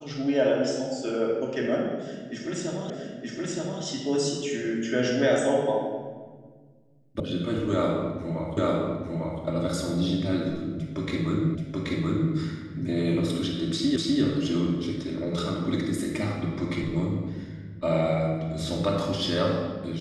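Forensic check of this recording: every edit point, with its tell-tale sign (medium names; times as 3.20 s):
2.90 s: repeat of the last 0.92 s
7.20 s: sound stops dead
8.57 s: repeat of the last 0.85 s
11.55 s: repeat of the last 0.78 s
13.96 s: repeat of the last 0.25 s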